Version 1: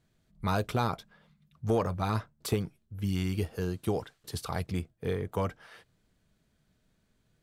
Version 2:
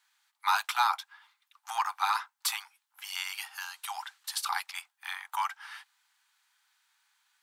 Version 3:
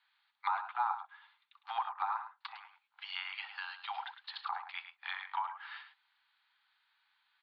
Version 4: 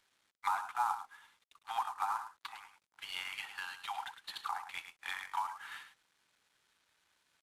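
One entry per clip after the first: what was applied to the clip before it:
octaver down 2 oct, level -6 dB; steep high-pass 810 Hz 96 dB/oct; notch 1100 Hz, Q 25; gain +8 dB
treble ducked by the level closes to 870 Hz, closed at -28 dBFS; steep low-pass 4400 Hz 72 dB/oct; on a send: tapped delay 62/106 ms -19.5/-10.5 dB; on the sum: gain -2 dB
CVSD 64 kbps

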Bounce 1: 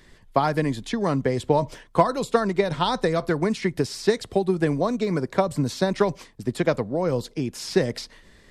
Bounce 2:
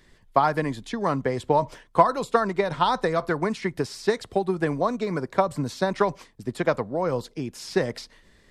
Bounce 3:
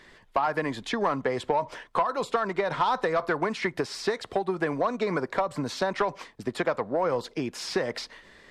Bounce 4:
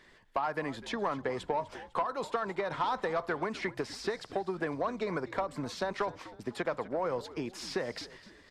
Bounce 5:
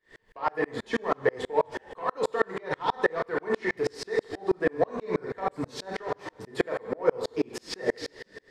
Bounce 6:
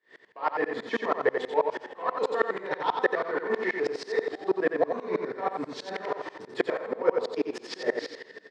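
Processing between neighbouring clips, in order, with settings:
dynamic EQ 1100 Hz, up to +8 dB, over -36 dBFS, Q 0.75; gain -4.5 dB
compressor 6:1, threshold -27 dBFS, peak gain reduction 15.5 dB; overdrive pedal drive 16 dB, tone 2300 Hz, clips at -11.5 dBFS
frequency-shifting echo 0.251 s, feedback 46%, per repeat -87 Hz, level -17 dB; gain -6.5 dB
small resonant body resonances 450/1800 Hz, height 11 dB, ringing for 45 ms; on a send at -2 dB: reverb, pre-delay 3 ms; on the sum: dB-ramp tremolo swelling 6.2 Hz, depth 37 dB; gain +9 dB
BPF 250–5000 Hz; on a send: echo 89 ms -6 dB

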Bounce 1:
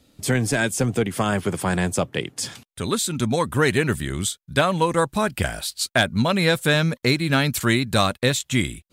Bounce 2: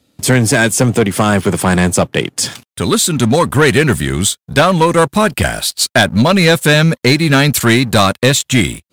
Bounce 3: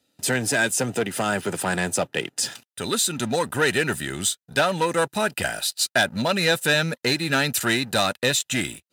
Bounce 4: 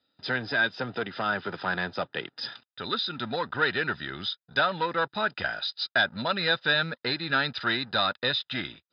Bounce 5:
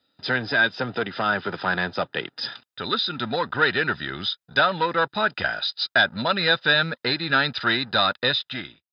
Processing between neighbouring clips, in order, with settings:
HPF 72 Hz 12 dB/oct; sample leveller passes 2; gain +4 dB
low shelf 440 Hz -9 dB; notch comb 1100 Hz; gain -7 dB
rippled Chebyshev low-pass 5100 Hz, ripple 9 dB
ending faded out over 0.63 s; gain +5 dB

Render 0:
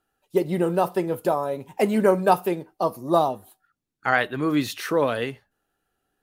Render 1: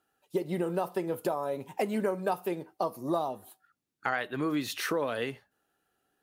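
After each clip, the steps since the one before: HPF 150 Hz 6 dB/oct; compressor 4:1, threshold -28 dBFS, peak gain reduction 13 dB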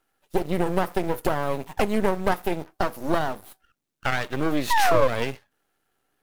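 in parallel at -7.5 dB: requantised 8-bit, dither none; on the sum: painted sound fall, 4.7–5.08, 500–1000 Hz -22 dBFS; half-wave rectifier; gain +7 dB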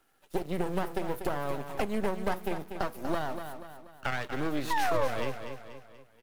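on a send: feedback echo 0.241 s, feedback 33%, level -10.5 dB; on the sum: three-band squash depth 40%; gain -8 dB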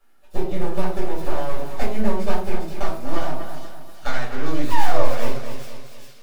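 tracing distortion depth 0.15 ms; thin delay 0.403 s, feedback 61%, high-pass 4200 Hz, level -4 dB; shoebox room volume 380 m³, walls furnished, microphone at 5.9 m; gain -5 dB

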